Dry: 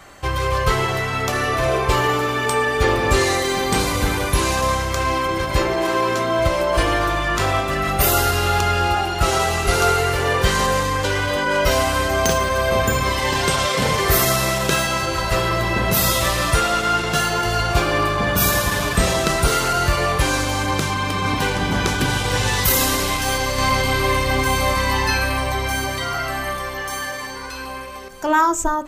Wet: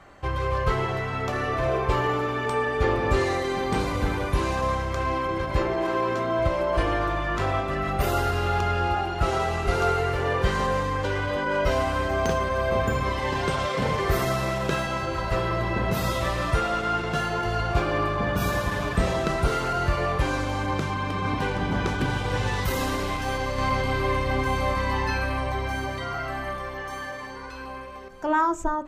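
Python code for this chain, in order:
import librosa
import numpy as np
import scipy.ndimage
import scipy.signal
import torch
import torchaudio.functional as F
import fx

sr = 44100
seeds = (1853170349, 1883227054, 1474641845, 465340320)

y = fx.lowpass(x, sr, hz=1600.0, slope=6)
y = y * librosa.db_to_amplitude(-4.5)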